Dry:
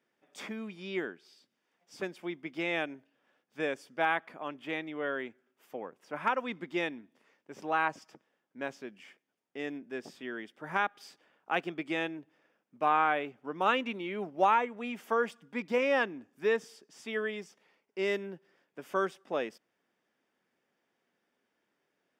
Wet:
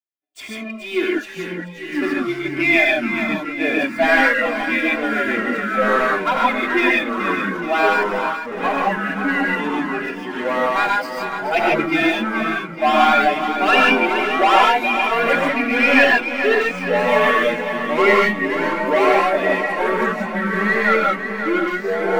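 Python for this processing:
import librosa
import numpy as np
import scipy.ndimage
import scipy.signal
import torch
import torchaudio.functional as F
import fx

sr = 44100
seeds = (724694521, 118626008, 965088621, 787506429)

y = fx.bin_expand(x, sr, power=1.5)
y = fx.dereverb_blind(y, sr, rt60_s=1.9)
y = fx.leveller(y, sr, passes=3)
y = fx.graphic_eq_15(y, sr, hz=(630, 2500, 6300), db=(5, 9, -4))
y = fx.transient(y, sr, attack_db=-2, sustain_db=3)
y = y + 0.99 * np.pad(y, (int(2.9 * sr / 1000.0), 0))[:len(y)]
y = fx.echo_feedback(y, sr, ms=427, feedback_pct=55, wet_db=-9)
y = fx.rev_gated(y, sr, seeds[0], gate_ms=170, shape='rising', drr_db=-2.0)
y = fx.echo_pitch(y, sr, ms=746, semitones=-4, count=2, db_per_echo=-3.0)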